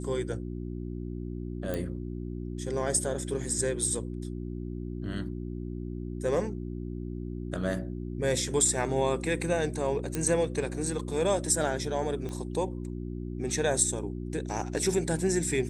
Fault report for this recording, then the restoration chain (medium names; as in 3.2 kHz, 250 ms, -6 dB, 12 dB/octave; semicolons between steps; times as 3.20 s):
hum 60 Hz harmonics 6 -36 dBFS
1.74 s: pop
10.15 s: pop -15 dBFS
12.29 s: pop -25 dBFS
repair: de-click; de-hum 60 Hz, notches 6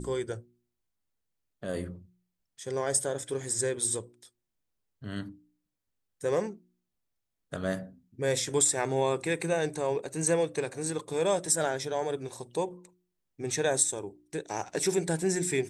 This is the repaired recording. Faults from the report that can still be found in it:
nothing left